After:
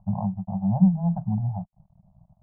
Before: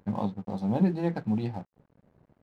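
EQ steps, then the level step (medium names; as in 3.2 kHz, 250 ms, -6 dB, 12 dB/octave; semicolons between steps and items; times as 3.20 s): elliptic band-stop 190–670 Hz, stop band 40 dB; inverse Chebyshev low-pass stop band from 1.8 kHz, stop band 40 dB; tilt EQ -2 dB/octave; +3.0 dB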